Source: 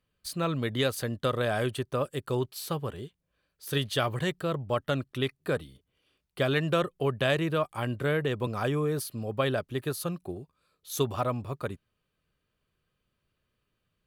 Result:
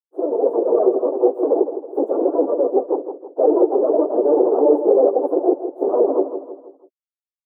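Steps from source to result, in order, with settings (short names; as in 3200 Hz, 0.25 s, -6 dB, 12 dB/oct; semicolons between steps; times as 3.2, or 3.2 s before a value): trilling pitch shifter +11.5 st, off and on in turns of 68 ms; fuzz box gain 47 dB, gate -53 dBFS; transient shaper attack -7 dB, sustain -11 dB; plain phase-vocoder stretch 0.53×; steep high-pass 340 Hz 48 dB/oct; feedback echo 0.161 s, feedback 42%, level -10 dB; AGC gain up to 9 dB; inverse Chebyshev low-pass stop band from 1900 Hz, stop band 60 dB; gain +5.5 dB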